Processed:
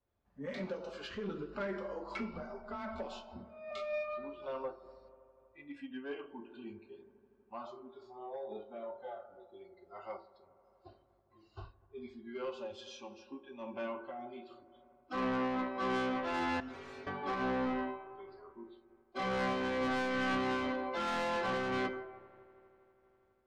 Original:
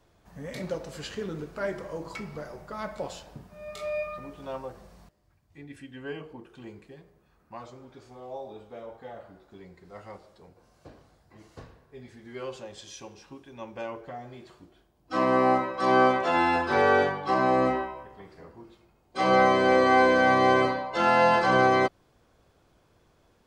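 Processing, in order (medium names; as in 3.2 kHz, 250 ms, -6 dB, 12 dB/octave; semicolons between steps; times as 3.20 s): in parallel at -3 dB: compression, threshold -35 dBFS, peak gain reduction 17.5 dB; on the sum: distance through air 200 m; on a send at -12 dB: reverberation RT60 1.0 s, pre-delay 4 ms; 2.19–3.71 s: on the sum: frequency shift +23 Hz; spectral noise reduction 19 dB; comb of notches 160 Hz; dynamic bell 680 Hz, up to -7 dB, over -37 dBFS, Q 1.8; saturation -27.5 dBFS, distortion -8 dB; 16.60–17.07 s: inharmonic resonator 130 Hz, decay 0.35 s, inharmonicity 0.002; feedback echo behind a low-pass 81 ms, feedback 84%, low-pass 1.3 kHz, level -18 dB; random flutter of the level, depth 60%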